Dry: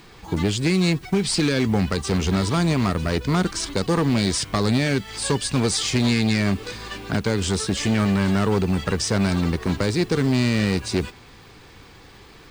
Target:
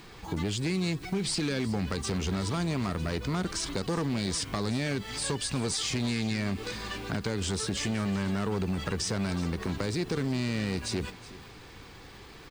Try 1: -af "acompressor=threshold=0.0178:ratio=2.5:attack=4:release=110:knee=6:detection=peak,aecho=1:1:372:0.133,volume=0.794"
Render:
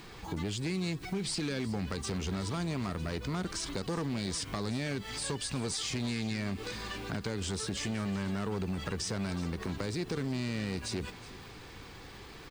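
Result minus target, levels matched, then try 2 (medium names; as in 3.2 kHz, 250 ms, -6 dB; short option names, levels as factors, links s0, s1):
compression: peak gain reduction +4 dB
-af "acompressor=threshold=0.0398:ratio=2.5:attack=4:release=110:knee=6:detection=peak,aecho=1:1:372:0.133,volume=0.794"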